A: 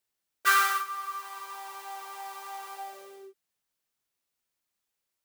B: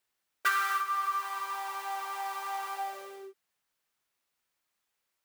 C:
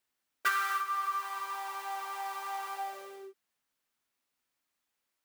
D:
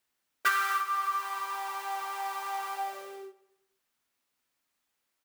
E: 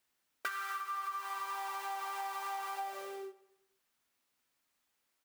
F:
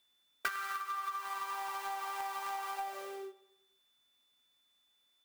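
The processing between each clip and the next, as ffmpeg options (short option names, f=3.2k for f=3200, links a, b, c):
-af "equalizer=f=1.4k:t=o:w=2.7:g=6,acompressor=threshold=-25dB:ratio=10"
-filter_complex "[0:a]equalizer=f=260:t=o:w=0.38:g=7,asplit=2[a][b];[b]acrusher=bits=2:mix=0:aa=0.5,volume=-11dB[c];[a][c]amix=inputs=2:normalize=0,volume=-2dB"
-filter_complex "[0:a]asplit=2[a][b];[b]adelay=94,lowpass=f=4.2k:p=1,volume=-17.5dB,asplit=2[c][d];[d]adelay=94,lowpass=f=4.2k:p=1,volume=0.55,asplit=2[e][f];[f]adelay=94,lowpass=f=4.2k:p=1,volume=0.55,asplit=2[g][h];[h]adelay=94,lowpass=f=4.2k:p=1,volume=0.55,asplit=2[i][j];[j]adelay=94,lowpass=f=4.2k:p=1,volume=0.55[k];[a][c][e][g][i][k]amix=inputs=6:normalize=0,volume=3dB"
-af "acompressor=threshold=-36dB:ratio=8"
-filter_complex "[0:a]aeval=exprs='val(0)+0.000251*sin(2*PI*3500*n/s)':c=same,asplit=2[a][b];[b]acrusher=bits=4:mix=0:aa=0.5,volume=-6dB[c];[a][c]amix=inputs=2:normalize=0"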